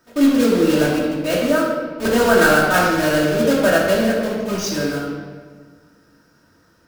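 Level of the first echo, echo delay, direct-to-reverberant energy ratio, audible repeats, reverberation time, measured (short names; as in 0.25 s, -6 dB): none, none, -5.0 dB, none, 1.6 s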